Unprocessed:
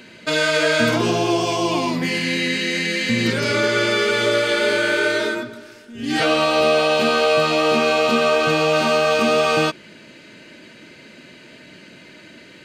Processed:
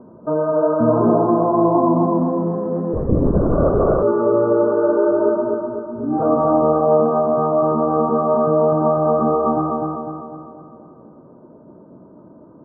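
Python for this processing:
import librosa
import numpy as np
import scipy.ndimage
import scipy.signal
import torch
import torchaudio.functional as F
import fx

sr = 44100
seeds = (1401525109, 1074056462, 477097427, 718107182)

y = scipy.signal.sosfilt(scipy.signal.butter(12, 1200.0, 'lowpass', fs=sr, output='sos'), x)
y = fx.rider(y, sr, range_db=3, speed_s=2.0)
y = fx.echo_feedback(y, sr, ms=250, feedback_pct=51, wet_db=-3.0)
y = fx.lpc_vocoder(y, sr, seeds[0], excitation='whisper', order=10, at=(2.93, 4.03))
y = y * librosa.db_to_amplitude(2.0)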